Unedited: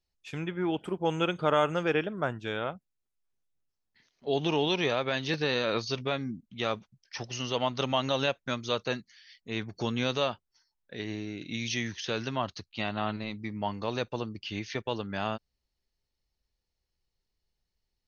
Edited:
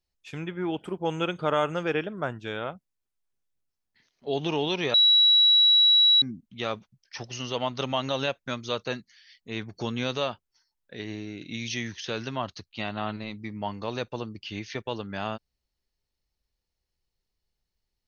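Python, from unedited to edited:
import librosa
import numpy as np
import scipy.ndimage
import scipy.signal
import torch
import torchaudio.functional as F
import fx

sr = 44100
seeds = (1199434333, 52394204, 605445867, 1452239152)

y = fx.edit(x, sr, fx.bleep(start_s=4.94, length_s=1.28, hz=3900.0, db=-15.0), tone=tone)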